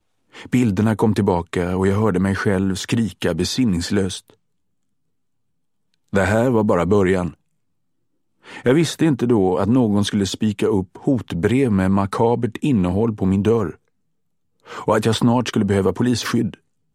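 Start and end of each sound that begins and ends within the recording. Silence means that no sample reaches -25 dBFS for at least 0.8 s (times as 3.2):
6.13–7.28
8.57–13.7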